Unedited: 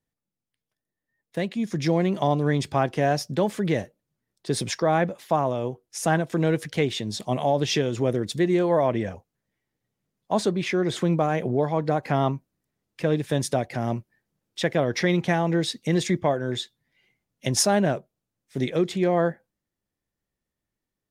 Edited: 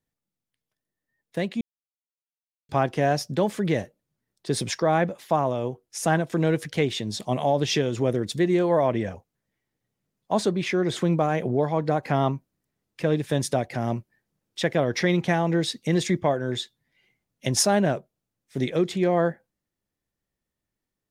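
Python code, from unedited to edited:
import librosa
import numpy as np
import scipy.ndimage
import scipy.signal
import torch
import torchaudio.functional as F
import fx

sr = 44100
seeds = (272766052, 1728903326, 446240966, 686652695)

y = fx.edit(x, sr, fx.silence(start_s=1.61, length_s=1.08), tone=tone)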